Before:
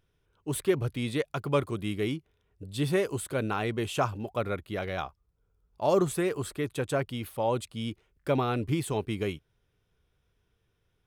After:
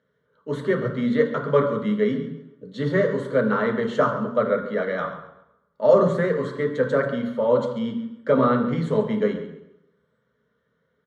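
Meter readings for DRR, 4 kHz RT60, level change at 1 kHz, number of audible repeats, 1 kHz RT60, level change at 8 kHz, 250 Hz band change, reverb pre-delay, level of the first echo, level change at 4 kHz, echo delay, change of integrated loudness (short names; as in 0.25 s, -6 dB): 3.0 dB, 0.75 s, +6.0 dB, 2, 0.85 s, under -10 dB, +8.0 dB, 7 ms, -14.0 dB, -2.5 dB, 0.137 s, +8.0 dB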